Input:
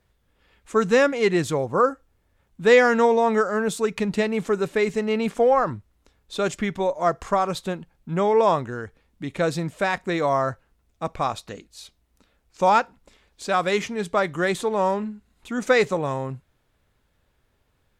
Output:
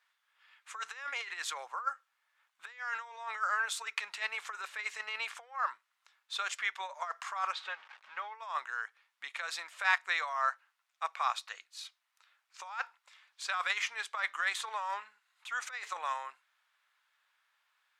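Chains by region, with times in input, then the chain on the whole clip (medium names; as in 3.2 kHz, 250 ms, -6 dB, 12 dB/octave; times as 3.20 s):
7.52–8.35 s: jump at every zero crossing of -38 dBFS + low-pass 3.3 kHz + comb of notches 340 Hz
whole clip: compressor with a negative ratio -23 dBFS, ratio -0.5; high-pass 1.1 kHz 24 dB/octave; treble shelf 5.8 kHz -11.5 dB; trim -1.5 dB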